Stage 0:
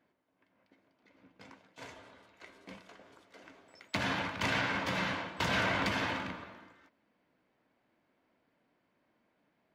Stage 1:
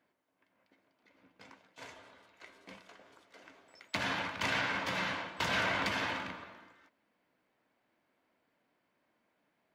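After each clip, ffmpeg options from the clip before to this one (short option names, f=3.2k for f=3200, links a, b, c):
-af "lowshelf=f=420:g=-6"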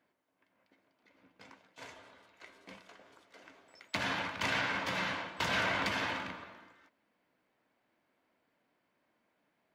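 -af anull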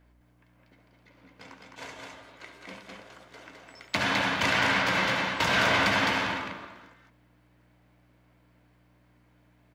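-af "aeval=exprs='val(0)+0.000398*(sin(2*PI*60*n/s)+sin(2*PI*2*60*n/s)/2+sin(2*PI*3*60*n/s)/3+sin(2*PI*4*60*n/s)/4+sin(2*PI*5*60*n/s)/5)':c=same,aecho=1:1:69.97|209.9:0.316|0.708,volume=7dB"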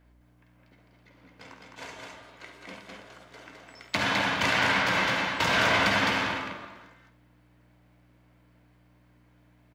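-filter_complex "[0:a]asplit=2[a][b];[b]adelay=50,volume=-10.5dB[c];[a][c]amix=inputs=2:normalize=0"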